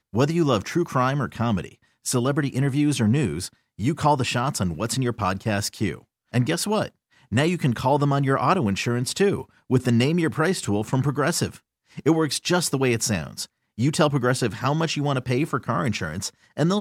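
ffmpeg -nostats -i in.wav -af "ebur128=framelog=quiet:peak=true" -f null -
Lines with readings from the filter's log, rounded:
Integrated loudness:
  I:         -23.4 LUFS
  Threshold: -33.6 LUFS
Loudness range:
  LRA:         2.4 LU
  Threshold: -43.5 LUFS
  LRA low:   -24.7 LUFS
  LRA high:  -22.3 LUFS
True peak:
  Peak:       -6.1 dBFS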